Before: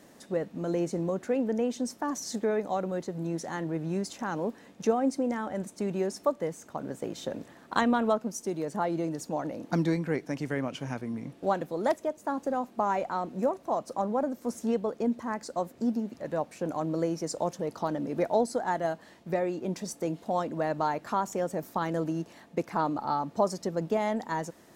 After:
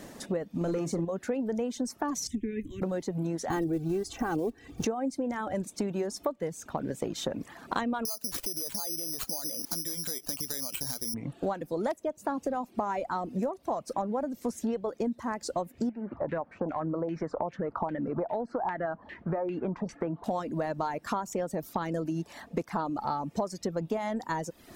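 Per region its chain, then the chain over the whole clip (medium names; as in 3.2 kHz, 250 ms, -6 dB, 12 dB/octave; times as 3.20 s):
0.61–1.05 s: waveshaping leveller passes 1 + doubling 42 ms -9.5 dB
2.27–2.82 s: Chebyshev band-stop 220–3000 Hz + tone controls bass +11 dB, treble -9 dB + static phaser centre 890 Hz, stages 8
3.50–4.85 s: block-companded coder 5-bit + bass shelf 440 Hz +11.5 dB + comb 2.6 ms, depth 68%
8.05–11.14 s: peaking EQ 110 Hz -5.5 dB 1.9 oct + compression 5:1, threshold -37 dBFS + careless resampling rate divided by 8×, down none, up zero stuff
15.89–20.24 s: compression 2:1, threshold -33 dBFS + LFO low-pass saw down 2.5 Hz 840–2400 Hz
whole clip: reverb removal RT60 0.58 s; bass shelf 69 Hz +11.5 dB; compression 6:1, threshold -37 dBFS; trim +8.5 dB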